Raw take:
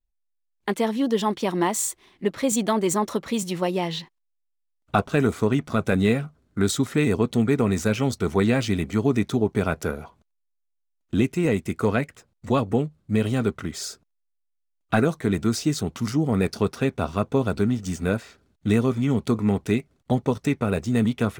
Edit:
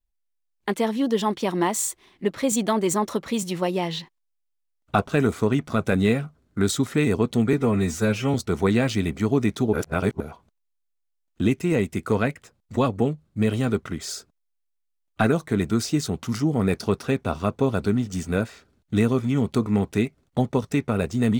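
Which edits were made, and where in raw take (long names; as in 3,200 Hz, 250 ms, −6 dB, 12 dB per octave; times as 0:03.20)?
0:07.53–0:08.07: time-stretch 1.5×
0:09.46–0:09.93: reverse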